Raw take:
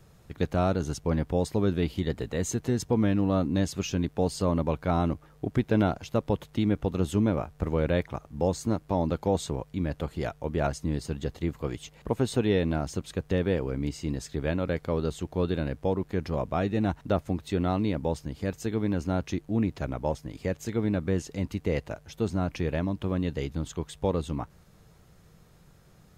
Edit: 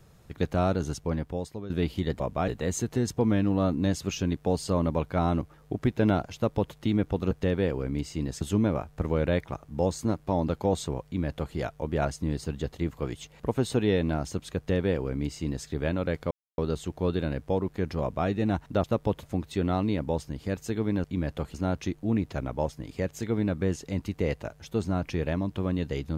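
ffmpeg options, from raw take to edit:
-filter_complex "[0:a]asplit=11[s0][s1][s2][s3][s4][s5][s6][s7][s8][s9][s10];[s0]atrim=end=1.7,asetpts=PTS-STARTPTS,afade=t=out:st=0.86:d=0.84:silence=0.158489[s11];[s1]atrim=start=1.7:end=2.202,asetpts=PTS-STARTPTS,afade=t=in:d=0.004:c=hsin:silence=0.158489[s12];[s2]atrim=start=16.358:end=16.642[s13];[s3]atrim=start=2.198:end=7.032[s14];[s4]atrim=start=13.188:end=14.292[s15];[s5]atrim=start=7.028:end=14.93,asetpts=PTS-STARTPTS,afade=t=out:st=7.898:d=0.004:c=hsin,apad=pad_dur=0.27[s16];[s6]atrim=start=14.93:end=17.192,asetpts=PTS-STARTPTS,afade=t=in:d=0.004:c=hsin[s17];[s7]atrim=start=6.068:end=6.462[s18];[s8]atrim=start=17.188:end=19.002[s19];[s9]atrim=start=9.668:end=10.172[s20];[s10]atrim=start=18.998[s21];[s11][s12]concat=n=2:v=0:a=1[s22];[s22][s13]acrossfade=d=0.004:c1=hsin:c2=hsin[s23];[s23][s14]acrossfade=d=0.004:c1=hsin:c2=hsin[s24];[s24][s15]acrossfade=d=0.004:c1=hsin:c2=hsin[s25];[s16][s17]concat=n=2:v=0:a=1[s26];[s25][s26]acrossfade=d=0.004:c1=hsin:c2=hsin[s27];[s27][s18]acrossfade=d=0.004:c1=hsin:c2=hsin[s28];[s28][s19]acrossfade=d=0.004:c1=hsin:c2=hsin[s29];[s29][s20]acrossfade=d=0.004:c1=hsin:c2=hsin[s30];[s30][s21]acrossfade=d=0.004:c1=hsin:c2=hsin"

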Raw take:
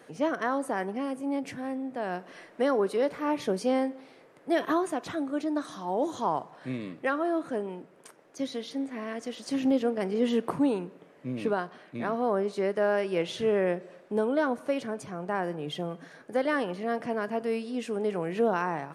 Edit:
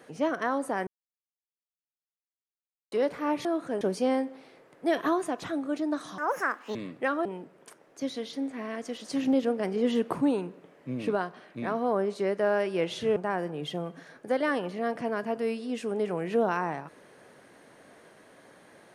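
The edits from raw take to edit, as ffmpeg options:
-filter_complex "[0:a]asplit=9[s0][s1][s2][s3][s4][s5][s6][s7][s8];[s0]atrim=end=0.87,asetpts=PTS-STARTPTS,afade=t=out:st=0.866:d=0.004:c=hsin[s9];[s1]atrim=start=0.87:end=2.92,asetpts=PTS-STARTPTS,volume=0[s10];[s2]atrim=start=2.92:end=3.452,asetpts=PTS-STARTPTS,afade=t=in:d=0.004:c=hsin[s11];[s3]atrim=start=7.268:end=7.632[s12];[s4]atrim=start=3.448:end=5.824[s13];[s5]atrim=start=5.82:end=6.77,asetpts=PTS-STARTPTS,asetrate=73206,aresample=44100[s14];[s6]atrim=start=6.766:end=7.272[s15];[s7]atrim=start=7.628:end=13.542[s16];[s8]atrim=start=15.208[s17];[s9][s10][s11]concat=n=3:v=0:a=1[s18];[s18][s12]acrossfade=d=0.004:c1=hsin:c2=hsin[s19];[s19][s13]acrossfade=d=0.004:c1=hsin:c2=hsin[s20];[s20][s14]acrossfade=d=0.004:c1=hsin:c2=hsin[s21];[s21][s15]acrossfade=d=0.004:c1=hsin:c2=hsin[s22];[s22][s16]acrossfade=d=0.004:c1=hsin:c2=hsin[s23];[s23][s17]acrossfade=d=0.004:c1=hsin:c2=hsin"

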